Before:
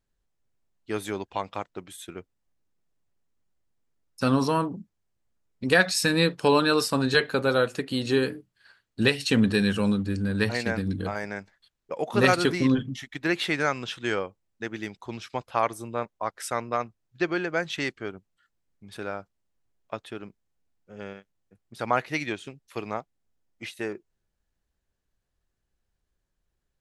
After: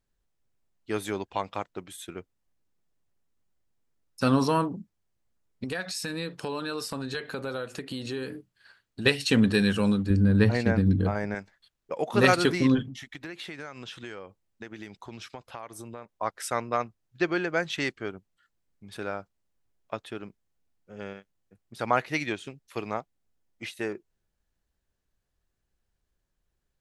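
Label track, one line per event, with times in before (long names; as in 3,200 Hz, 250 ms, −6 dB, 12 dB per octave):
5.640000	9.060000	downward compressor 3 to 1, threshold −33 dBFS
10.100000	11.350000	spectral tilt −2.5 dB per octave
12.830000	16.090000	downward compressor 5 to 1, threshold −37 dBFS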